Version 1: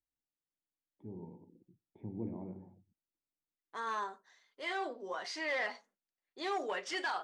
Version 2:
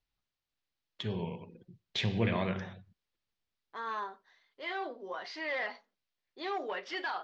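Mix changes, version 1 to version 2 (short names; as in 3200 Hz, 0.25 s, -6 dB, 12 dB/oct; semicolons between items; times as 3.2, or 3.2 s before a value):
first voice: remove vocal tract filter u; master: add LPF 4700 Hz 24 dB/oct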